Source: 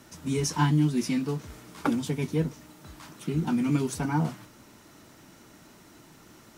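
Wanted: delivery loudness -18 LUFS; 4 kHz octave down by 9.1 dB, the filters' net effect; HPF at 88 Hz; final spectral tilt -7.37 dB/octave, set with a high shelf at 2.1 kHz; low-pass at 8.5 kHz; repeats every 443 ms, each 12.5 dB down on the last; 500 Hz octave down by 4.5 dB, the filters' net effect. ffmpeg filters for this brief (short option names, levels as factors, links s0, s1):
-af "highpass=88,lowpass=8500,equalizer=f=500:t=o:g=-5.5,highshelf=f=2100:g=-5,equalizer=f=4000:t=o:g=-7.5,aecho=1:1:443|886|1329:0.237|0.0569|0.0137,volume=3.98"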